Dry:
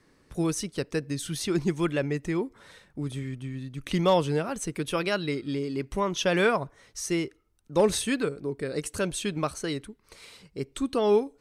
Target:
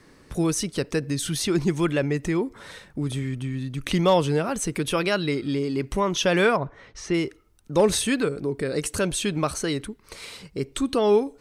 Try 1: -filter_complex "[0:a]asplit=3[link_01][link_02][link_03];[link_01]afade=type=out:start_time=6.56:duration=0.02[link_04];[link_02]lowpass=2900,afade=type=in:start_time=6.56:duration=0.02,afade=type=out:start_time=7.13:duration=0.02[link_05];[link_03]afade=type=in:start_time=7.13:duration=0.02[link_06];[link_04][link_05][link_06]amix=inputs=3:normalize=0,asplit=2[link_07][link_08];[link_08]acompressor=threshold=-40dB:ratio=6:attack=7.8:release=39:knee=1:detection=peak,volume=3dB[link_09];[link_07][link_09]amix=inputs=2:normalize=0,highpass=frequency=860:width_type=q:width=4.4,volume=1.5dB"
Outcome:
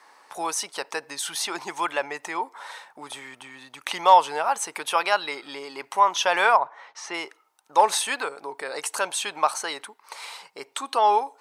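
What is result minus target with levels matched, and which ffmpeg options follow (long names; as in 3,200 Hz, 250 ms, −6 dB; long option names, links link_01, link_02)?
1,000 Hz band +9.5 dB
-filter_complex "[0:a]asplit=3[link_01][link_02][link_03];[link_01]afade=type=out:start_time=6.56:duration=0.02[link_04];[link_02]lowpass=2900,afade=type=in:start_time=6.56:duration=0.02,afade=type=out:start_time=7.13:duration=0.02[link_05];[link_03]afade=type=in:start_time=7.13:duration=0.02[link_06];[link_04][link_05][link_06]amix=inputs=3:normalize=0,asplit=2[link_07][link_08];[link_08]acompressor=threshold=-40dB:ratio=6:attack=7.8:release=39:knee=1:detection=peak,volume=3dB[link_09];[link_07][link_09]amix=inputs=2:normalize=0,volume=1.5dB"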